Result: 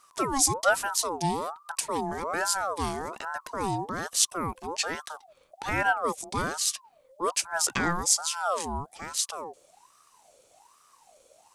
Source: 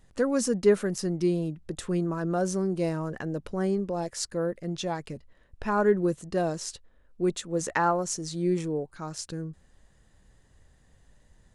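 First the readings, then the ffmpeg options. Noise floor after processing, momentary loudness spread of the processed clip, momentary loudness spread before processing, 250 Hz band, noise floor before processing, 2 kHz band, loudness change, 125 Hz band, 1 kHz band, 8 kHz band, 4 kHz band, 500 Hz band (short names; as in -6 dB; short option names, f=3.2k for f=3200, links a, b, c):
-62 dBFS, 11 LU, 13 LU, -8.0 dB, -61 dBFS, +7.0 dB, +0.5 dB, -6.5 dB, +4.5 dB, +10.0 dB, +9.0 dB, -6.5 dB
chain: -af "aexciter=amount=3.7:drive=4.4:freq=2.5k,aeval=exprs='val(0)*sin(2*PI*860*n/s+860*0.4/1.2*sin(2*PI*1.2*n/s))':c=same"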